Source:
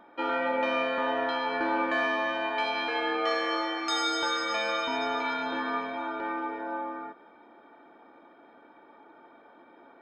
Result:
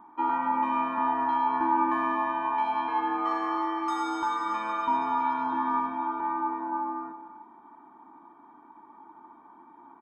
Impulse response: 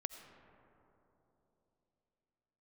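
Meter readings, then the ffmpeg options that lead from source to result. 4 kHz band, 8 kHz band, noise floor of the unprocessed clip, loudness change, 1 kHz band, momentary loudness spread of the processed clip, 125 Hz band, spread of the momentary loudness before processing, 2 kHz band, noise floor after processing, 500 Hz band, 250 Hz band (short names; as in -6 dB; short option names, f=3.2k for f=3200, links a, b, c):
-14.5 dB, under -10 dB, -56 dBFS, +1.0 dB, +5.5 dB, 6 LU, n/a, 7 LU, -7.5 dB, -54 dBFS, -8.5 dB, +2.0 dB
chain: -filter_complex "[0:a]firequalizer=gain_entry='entry(330,0);entry(520,-21);entry(970,11);entry(1400,-8);entry(4500,-21);entry(9100,-5)':delay=0.05:min_phase=1[a];[1:a]atrim=start_sample=2205,afade=t=out:st=0.41:d=0.01,atrim=end_sample=18522,asetrate=42777,aresample=44100[b];[a][b]afir=irnorm=-1:irlink=0,volume=3.5dB"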